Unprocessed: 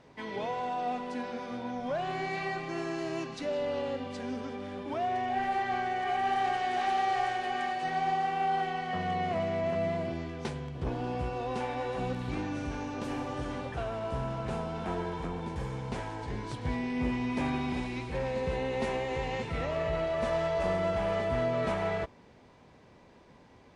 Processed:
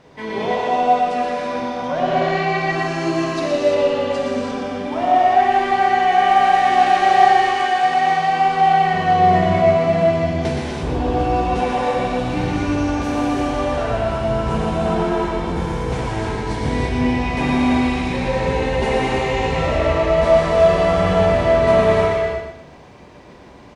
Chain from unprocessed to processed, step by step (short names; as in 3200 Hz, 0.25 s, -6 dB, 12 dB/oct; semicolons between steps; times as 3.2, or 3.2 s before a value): 1.88–2.59 LPF 6000 Hz 12 dB/oct; 7.31–8.2 low shelf 220 Hz -9 dB; feedback echo 0.12 s, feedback 32%, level -6 dB; reverb, pre-delay 3 ms, DRR -4.5 dB; gain +7.5 dB